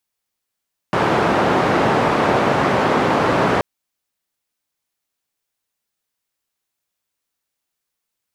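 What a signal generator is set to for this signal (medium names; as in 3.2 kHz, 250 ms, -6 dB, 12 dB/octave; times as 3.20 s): noise band 130–950 Hz, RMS -16.5 dBFS 2.68 s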